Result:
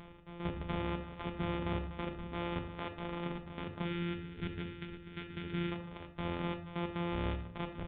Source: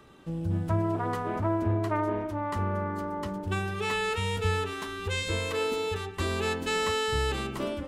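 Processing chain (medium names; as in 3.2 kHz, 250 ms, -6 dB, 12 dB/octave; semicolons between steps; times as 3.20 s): sorted samples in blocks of 256 samples; reverb removal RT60 0.86 s; time-frequency box 3.85–5.72 s, 480–1300 Hz -13 dB; reverse; upward compressor, threshold -35 dBFS; reverse; peak limiter -25 dBFS, peak gain reduction 9.5 dB; trance gate "xx..x.xx" 151 bpm -12 dB; simulated room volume 730 m³, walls furnished, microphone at 1.3 m; resampled via 8 kHz; trim -3 dB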